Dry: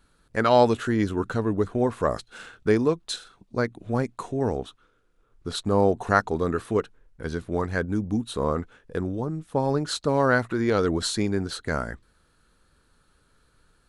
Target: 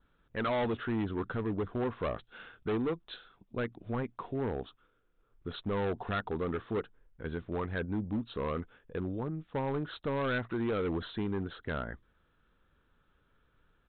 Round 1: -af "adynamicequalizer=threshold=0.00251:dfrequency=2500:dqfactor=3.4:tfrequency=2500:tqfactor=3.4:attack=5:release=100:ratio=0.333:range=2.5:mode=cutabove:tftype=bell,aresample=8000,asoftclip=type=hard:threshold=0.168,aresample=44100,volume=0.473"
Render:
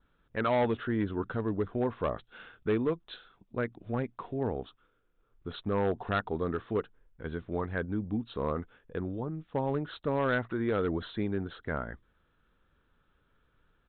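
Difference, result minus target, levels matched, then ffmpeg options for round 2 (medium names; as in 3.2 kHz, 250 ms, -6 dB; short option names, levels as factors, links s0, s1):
hard clipper: distortion -6 dB
-af "adynamicequalizer=threshold=0.00251:dfrequency=2500:dqfactor=3.4:tfrequency=2500:tqfactor=3.4:attack=5:release=100:ratio=0.333:range=2.5:mode=cutabove:tftype=bell,aresample=8000,asoftclip=type=hard:threshold=0.0841,aresample=44100,volume=0.473"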